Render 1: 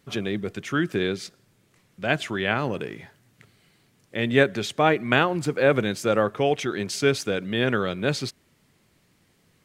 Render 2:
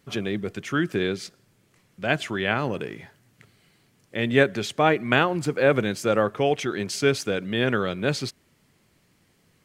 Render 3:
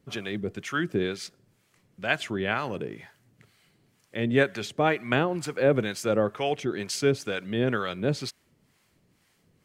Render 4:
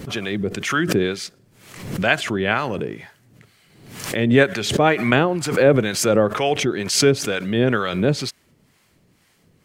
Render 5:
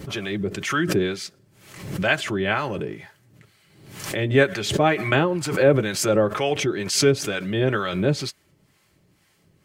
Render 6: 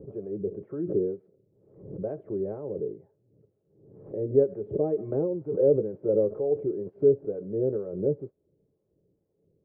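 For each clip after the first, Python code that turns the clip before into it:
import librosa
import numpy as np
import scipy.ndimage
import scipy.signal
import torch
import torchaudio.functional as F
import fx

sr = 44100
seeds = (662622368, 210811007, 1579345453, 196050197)

y1 = fx.notch(x, sr, hz=3700.0, q=28.0)
y2 = fx.harmonic_tremolo(y1, sr, hz=2.1, depth_pct=70, crossover_hz=680.0)
y3 = fx.pre_swell(y2, sr, db_per_s=71.0)
y3 = y3 * librosa.db_to_amplitude(7.0)
y4 = fx.notch_comb(y3, sr, f0_hz=240.0)
y4 = y4 * librosa.db_to_amplitude(-1.5)
y5 = fx.ladder_lowpass(y4, sr, hz=510.0, resonance_pct=70)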